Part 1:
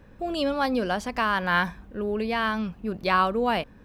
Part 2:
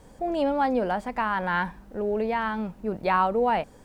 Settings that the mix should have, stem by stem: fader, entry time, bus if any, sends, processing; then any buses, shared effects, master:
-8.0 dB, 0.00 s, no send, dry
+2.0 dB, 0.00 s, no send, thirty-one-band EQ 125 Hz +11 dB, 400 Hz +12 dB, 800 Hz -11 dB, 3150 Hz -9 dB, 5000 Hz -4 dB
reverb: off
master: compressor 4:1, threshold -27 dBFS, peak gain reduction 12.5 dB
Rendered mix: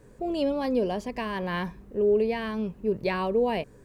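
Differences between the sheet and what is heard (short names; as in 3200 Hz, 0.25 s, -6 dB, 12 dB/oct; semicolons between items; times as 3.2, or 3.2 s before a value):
stem 2 +2.0 dB -> -5.5 dB; master: missing compressor 4:1, threshold -27 dBFS, peak gain reduction 12.5 dB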